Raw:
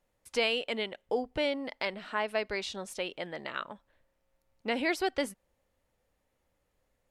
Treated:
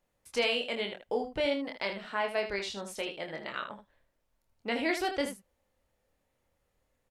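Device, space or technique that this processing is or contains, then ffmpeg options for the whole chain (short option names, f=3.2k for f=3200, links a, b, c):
slapback doubling: -filter_complex "[0:a]asplit=3[a][b][c];[b]adelay=25,volume=-5dB[d];[c]adelay=79,volume=-9dB[e];[a][d][e]amix=inputs=3:normalize=0,volume=-1.5dB"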